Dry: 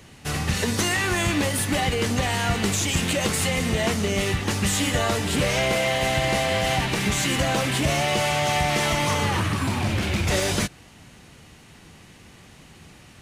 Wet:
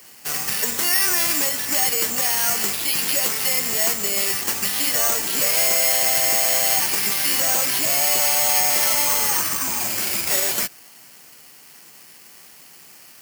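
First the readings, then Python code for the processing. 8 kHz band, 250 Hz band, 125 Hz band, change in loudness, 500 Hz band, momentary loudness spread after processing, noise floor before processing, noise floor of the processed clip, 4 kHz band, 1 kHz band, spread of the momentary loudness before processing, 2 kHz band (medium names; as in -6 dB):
+9.0 dB, -10.5 dB, -18.0 dB, +5.5 dB, -4.5 dB, 5 LU, -49 dBFS, -46 dBFS, +2.5 dB, -2.5 dB, 3 LU, -0.5 dB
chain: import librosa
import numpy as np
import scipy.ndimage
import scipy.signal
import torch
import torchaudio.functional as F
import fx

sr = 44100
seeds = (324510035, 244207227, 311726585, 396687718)

y = fx.weighting(x, sr, curve='A')
y = 10.0 ** (-15.5 / 20.0) * np.tanh(y / 10.0 ** (-15.5 / 20.0))
y = (np.kron(scipy.signal.resample_poly(y, 1, 6), np.eye(6)[0]) * 6)[:len(y)]
y = y * 10.0 ** (-1.0 / 20.0)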